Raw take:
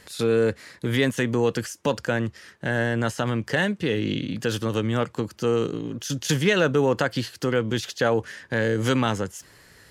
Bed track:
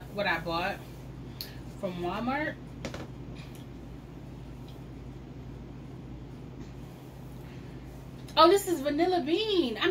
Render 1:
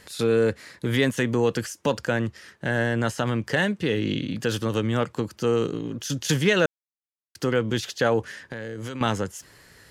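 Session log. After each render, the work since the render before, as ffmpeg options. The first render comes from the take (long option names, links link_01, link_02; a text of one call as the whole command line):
ffmpeg -i in.wav -filter_complex "[0:a]asettb=1/sr,asplit=3[link_01][link_02][link_03];[link_01]atrim=end=8.334[link_04];[link_02]atrim=start=8.33:end=9.01,asetpts=PTS-STARTPTS,afade=type=in:duration=0.004:curve=qsin,afade=type=out:start_time=0.676:duration=0.004:curve=qsin,acompressor=threshold=-31dB:ratio=5:attack=3.2:release=140:knee=1:detection=peak[link_05];[link_03]atrim=start=9.006[link_06];[link_04][link_05]acrossfade=duration=0.004:curve1=hsin:curve2=qsin[link_07];[link_07][link_06]acrossfade=duration=0.004:curve1=qsin:curve2=hsin,asplit=3[link_08][link_09][link_10];[link_08]atrim=end=6.66,asetpts=PTS-STARTPTS,afade=type=out:start_time=6.656:duration=0.004:curve=hsin[link_11];[link_09]atrim=start=6.66:end=7.35,asetpts=PTS-STARTPTS,volume=0[link_12];[link_10]atrim=start=7.35,asetpts=PTS-STARTPTS,afade=type=in:duration=0.004:curve=hsin[link_13];[link_11][link_12][link_13]concat=n=3:v=0:a=1" out.wav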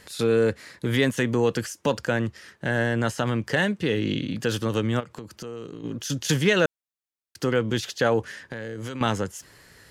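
ffmpeg -i in.wav -filter_complex "[0:a]asplit=3[link_01][link_02][link_03];[link_01]afade=type=out:start_time=4.99:duration=0.02[link_04];[link_02]acompressor=threshold=-35dB:ratio=4:attack=3.2:release=140:knee=1:detection=peak,afade=type=in:start_time=4.99:duration=0.02,afade=type=out:start_time=5.83:duration=0.02[link_05];[link_03]afade=type=in:start_time=5.83:duration=0.02[link_06];[link_04][link_05][link_06]amix=inputs=3:normalize=0" out.wav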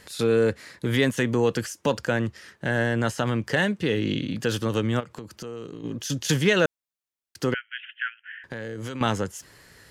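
ffmpeg -i in.wav -filter_complex "[0:a]asettb=1/sr,asplit=3[link_01][link_02][link_03];[link_01]atrim=end=5.724[link_04];[link_02]atrim=start=5.72:end=6.23,asetpts=PTS-STARTPTS,afade=type=in:duration=0.004:curve=qsin,afade=type=out:start_time=0.506:duration=0.004:curve=qsin,bandreject=frequency=1400:width=12[link_05];[link_03]atrim=start=6.226[link_06];[link_04][link_05]acrossfade=duration=0.004:curve1=hsin:curve2=qsin[link_07];[link_07][link_06]acrossfade=duration=0.004:curve1=qsin:curve2=hsin,asettb=1/sr,asplit=3[link_08][link_09][link_10];[link_08]atrim=end=7.544[link_11];[link_09]atrim=start=7.54:end=8.44,asetpts=PTS-STARTPTS,afade=type=in:duration=0.004:curve=qsin,afade=type=out:start_time=0.896:duration=0.004:curve=qsin,asuperpass=centerf=2100:order=20:qfactor=1.2[link_12];[link_10]atrim=start=8.436[link_13];[link_11][link_12]acrossfade=duration=0.004:curve1=hsin:curve2=qsin[link_14];[link_14][link_13]acrossfade=duration=0.004:curve1=qsin:curve2=hsin" out.wav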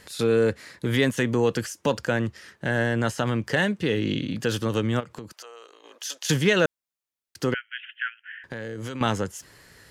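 ffmpeg -i in.wav -filter_complex "[0:a]asettb=1/sr,asplit=3[link_01][link_02][link_03];[link_01]atrim=end=5.324[link_04];[link_02]atrim=start=5.32:end=6.28,asetpts=PTS-STARTPTS,afade=type=in:duration=0.004:curve=qsin,afade=type=out:start_time=0.956:duration=0.004:curve=qsin,highpass=frequency=610:width=0.5412,highpass=frequency=610:width=1.3066[link_05];[link_03]atrim=start=6.276[link_06];[link_04][link_05]acrossfade=duration=0.004:curve1=hsin:curve2=qsin[link_07];[link_07][link_06]acrossfade=duration=0.004:curve1=qsin:curve2=hsin" out.wav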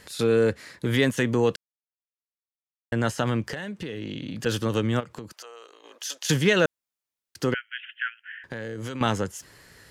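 ffmpeg -i in.wav -filter_complex "[0:a]asettb=1/sr,asplit=3[link_01][link_02][link_03];[link_01]atrim=end=3.424[link_04];[link_02]atrim=start=3.42:end=4.46,asetpts=PTS-STARTPTS,afade=type=in:duration=0.004:curve=qsin,afade=type=out:start_time=1.036:duration=0.004:curve=qsin,acompressor=threshold=-29dB:ratio=10:attack=3.2:release=140:knee=1:detection=peak[link_05];[link_03]atrim=start=4.456[link_06];[link_04][link_05]acrossfade=duration=0.004:curve1=hsin:curve2=qsin[link_07];[link_07][link_06]acrossfade=duration=0.004:curve1=qsin:curve2=hsin,asplit=3[link_08][link_09][link_10];[link_08]atrim=end=1.56,asetpts=PTS-STARTPTS,afade=type=out:start_time=1.556:duration=0.004:curve=hsin[link_11];[link_09]atrim=start=1.56:end=2.92,asetpts=PTS-STARTPTS,volume=0[link_12];[link_10]atrim=start=2.92,asetpts=PTS-STARTPTS,afade=type=in:duration=0.004:curve=hsin[link_13];[link_11][link_12][link_13]concat=n=3:v=0:a=1" out.wav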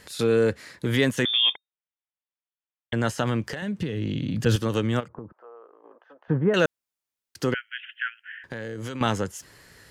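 ffmpeg -i in.wav -filter_complex "[0:a]asettb=1/sr,asplit=3[link_01][link_02][link_03];[link_01]atrim=end=1.254[link_04];[link_02]atrim=start=1.25:end=2.93,asetpts=PTS-STARTPTS,afade=type=in:duration=0.004:curve=qsin,afade=type=out:start_time=1.676:duration=0.004:curve=qsin,lowpass=frequency=3100:width_type=q:width=0.5098,lowpass=frequency=3100:width_type=q:width=0.6013,lowpass=frequency=3100:width_type=q:width=0.9,lowpass=frequency=3100:width_type=q:width=2.563,afreqshift=-3700[link_05];[link_03]atrim=start=2.926[link_06];[link_04][link_05]acrossfade=duration=0.004:curve1=hsin:curve2=qsin[link_07];[link_07][link_06]acrossfade=duration=0.004:curve1=qsin:curve2=hsin,asettb=1/sr,asplit=3[link_08][link_09][link_10];[link_08]atrim=end=3.624[link_11];[link_09]atrim=start=3.62:end=4.56,asetpts=PTS-STARTPTS,afade=type=in:duration=0.004:curve=qsin,afade=type=out:start_time=0.936:duration=0.004:curve=qsin,equalizer=frequency=110:width_type=o:width=2.3:gain=10.5[link_12];[link_10]atrim=start=4.556[link_13];[link_11][link_12]acrossfade=duration=0.004:curve1=hsin:curve2=qsin[link_14];[link_14][link_13]acrossfade=duration=0.004:curve1=qsin:curve2=hsin,asettb=1/sr,asplit=3[link_15][link_16][link_17];[link_15]atrim=end=5.084[link_18];[link_16]atrim=start=5.08:end=6.54,asetpts=PTS-STARTPTS,afade=type=in:duration=0.004:curve=qsin,afade=type=out:start_time=1.456:duration=0.004:curve=qsin,lowpass=frequency=1200:width=0.5412,lowpass=frequency=1200:width=1.3066[link_19];[link_17]atrim=start=6.536[link_20];[link_18][link_19]acrossfade=duration=0.004:curve1=hsin:curve2=qsin[link_21];[link_21][link_20]acrossfade=duration=0.004:curve1=qsin:curve2=hsin" out.wav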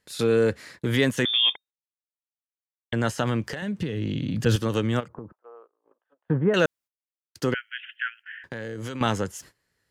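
ffmpeg -i in.wav -af "agate=range=-23dB:threshold=-47dB:ratio=16:detection=peak" out.wav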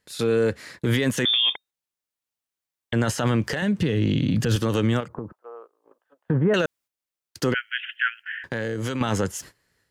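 ffmpeg -i in.wav -af "dynaudnorm=framelen=490:gausssize=3:maxgain=8dB,alimiter=limit=-13dB:level=0:latency=1:release=28" out.wav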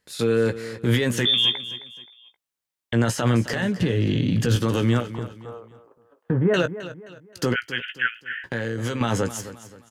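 ffmpeg -i in.wav -filter_complex "[0:a]asplit=2[link_01][link_02];[link_02]adelay=17,volume=-9.5dB[link_03];[link_01][link_03]amix=inputs=2:normalize=0,aecho=1:1:263|526|789:0.2|0.0718|0.0259" out.wav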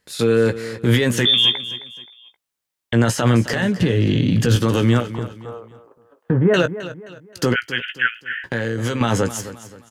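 ffmpeg -i in.wav -af "volume=4.5dB" out.wav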